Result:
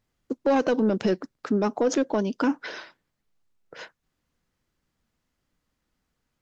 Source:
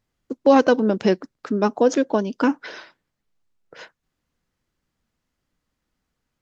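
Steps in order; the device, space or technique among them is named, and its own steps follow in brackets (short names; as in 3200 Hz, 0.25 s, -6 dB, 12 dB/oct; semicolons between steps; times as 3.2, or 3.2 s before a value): soft clipper into limiter (soft clip -9.5 dBFS, distortion -16 dB; limiter -15 dBFS, peak gain reduction 5 dB)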